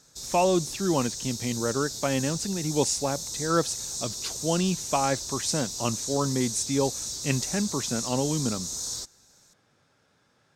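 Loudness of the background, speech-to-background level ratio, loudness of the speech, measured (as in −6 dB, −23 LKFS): −32.0 LKFS, 3.5 dB, −28.5 LKFS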